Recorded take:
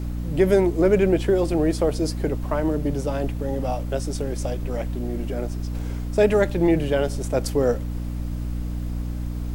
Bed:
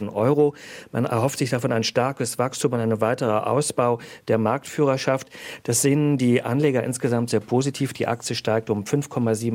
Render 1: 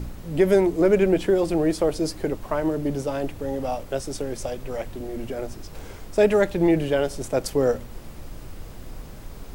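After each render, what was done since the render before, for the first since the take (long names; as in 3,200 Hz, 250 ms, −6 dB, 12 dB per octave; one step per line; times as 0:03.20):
hum removal 60 Hz, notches 5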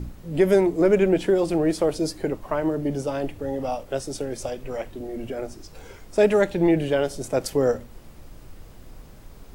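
noise reduction from a noise print 6 dB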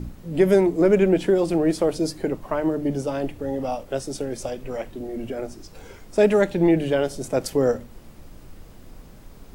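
parametric band 210 Hz +3 dB 1.2 octaves
mains-hum notches 50/100/150 Hz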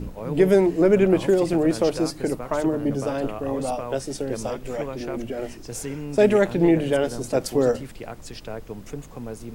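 mix in bed −13 dB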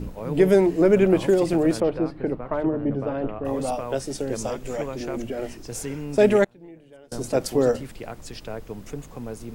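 0:01.80–0:03.45: high-frequency loss of the air 460 metres
0:04.19–0:05.27: parametric band 6,900 Hz +5.5 dB 0.44 octaves
0:06.44–0:07.12: gate with flip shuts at −25 dBFS, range −27 dB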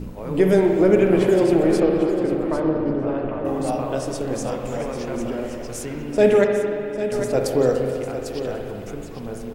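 on a send: single-tap delay 799 ms −10 dB
on the sum: spring reverb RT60 2.5 s, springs 38/59 ms, chirp 25 ms, DRR 2 dB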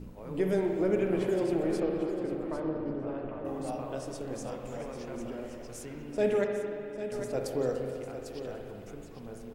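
level −12 dB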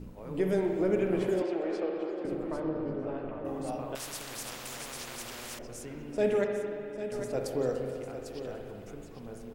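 0:01.42–0:02.25: three-way crossover with the lows and the highs turned down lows −21 dB, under 300 Hz, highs −23 dB, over 5,700 Hz
0:02.76–0:03.31: double-tracking delay 19 ms −6 dB
0:03.95–0:05.59: every bin compressed towards the loudest bin 4 to 1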